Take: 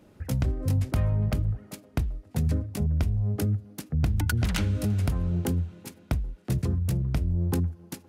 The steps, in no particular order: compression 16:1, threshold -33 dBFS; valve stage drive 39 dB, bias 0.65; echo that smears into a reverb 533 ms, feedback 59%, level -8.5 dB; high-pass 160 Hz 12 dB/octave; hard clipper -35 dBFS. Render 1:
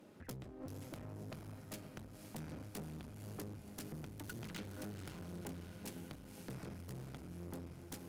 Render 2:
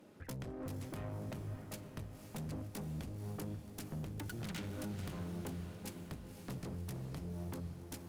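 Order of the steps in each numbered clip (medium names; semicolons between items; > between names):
compression > echo that smears into a reverb > hard clipper > high-pass > valve stage; high-pass > compression > hard clipper > valve stage > echo that smears into a reverb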